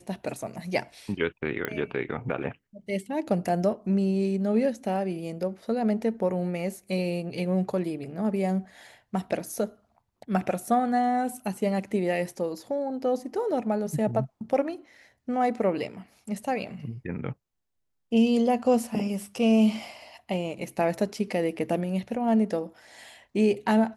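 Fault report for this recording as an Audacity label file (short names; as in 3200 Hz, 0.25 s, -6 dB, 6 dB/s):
1.650000	1.650000	pop -15 dBFS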